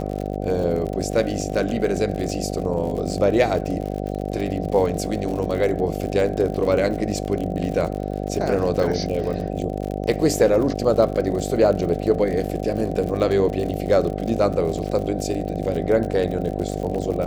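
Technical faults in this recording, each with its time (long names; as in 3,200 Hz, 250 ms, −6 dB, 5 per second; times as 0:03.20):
mains buzz 50 Hz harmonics 15 −27 dBFS
surface crackle 60 per second −28 dBFS
0:08.83: drop-out 4.3 ms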